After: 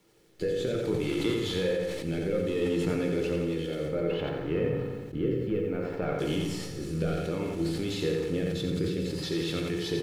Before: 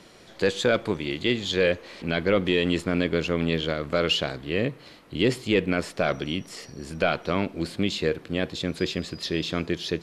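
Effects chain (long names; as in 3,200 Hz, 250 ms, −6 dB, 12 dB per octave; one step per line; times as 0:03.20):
linear delta modulator 64 kbit/s, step −35.5 dBFS
0:03.86–0:06.19: low-pass filter 2,000 Hz 12 dB per octave
noise gate with hold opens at −34 dBFS
parametric band 210 Hz +8.5 dB 1.9 octaves
comb filter 2.3 ms, depth 46%
downward compressor, threshold −22 dBFS, peak gain reduction 10.5 dB
rotating-speaker cabinet horn 0.6 Hz
bit reduction 11 bits
repeating echo 87 ms, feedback 48%, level −5 dB
convolution reverb RT60 0.60 s, pre-delay 6 ms, DRR 4 dB
level that may fall only so fast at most 35 dB per second
level −5 dB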